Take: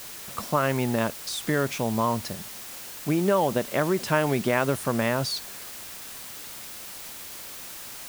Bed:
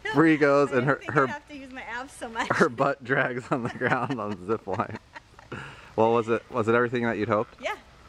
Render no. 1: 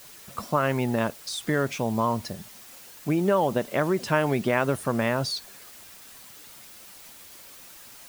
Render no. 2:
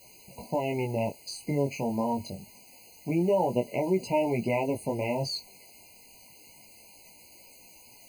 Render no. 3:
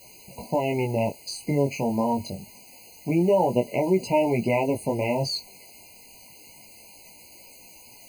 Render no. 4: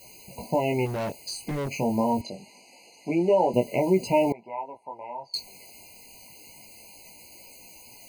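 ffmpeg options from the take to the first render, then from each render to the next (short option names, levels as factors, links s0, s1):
-af "afftdn=nr=8:nf=-40"
-af "flanger=delay=16:depth=5.6:speed=0.26,afftfilt=real='re*eq(mod(floor(b*sr/1024/1000),2),0)':imag='im*eq(mod(floor(b*sr/1024/1000),2),0)':win_size=1024:overlap=0.75"
-af "volume=1.68"
-filter_complex "[0:a]asplit=3[s0][s1][s2];[s0]afade=t=out:st=0.85:d=0.02[s3];[s1]volume=22.4,asoftclip=hard,volume=0.0447,afade=t=in:st=0.85:d=0.02,afade=t=out:st=1.68:d=0.02[s4];[s2]afade=t=in:st=1.68:d=0.02[s5];[s3][s4][s5]amix=inputs=3:normalize=0,asettb=1/sr,asplit=3[s6][s7][s8];[s6]atrim=end=2.214[s9];[s7]atrim=start=2.21:end=3.54,asetpts=PTS-STARTPTS,afade=t=in:d=0.004:c=qsin,afade=t=out:st=1.326:d=0.004:c=qsin,highpass=250,lowpass=6200[s10];[s8]atrim=start=3.536[s11];[s9][s10]acrossfade=d=0.004:c1=hsin:c2=qsin[s12];[s12][s11]acrossfade=d=0.004:c1=qsin:c2=hsin,asettb=1/sr,asplit=3[s13][s14][s15];[s13]atrim=end=4.324[s16];[s14]atrim=start=4.32:end=5.34,asetpts=PTS-STARTPTS,afade=t=in:d=0.004:c=qsin,afade=t=out:st=1.016:d=0.004:c=qsin,bandpass=f=950:t=q:w=5.5[s17];[s15]atrim=start=5.336[s18];[s16][s17]acrossfade=d=0.004:c1=hsin:c2=qsin[s19];[s19][s18]acrossfade=d=0.004:c1=qsin:c2=hsin"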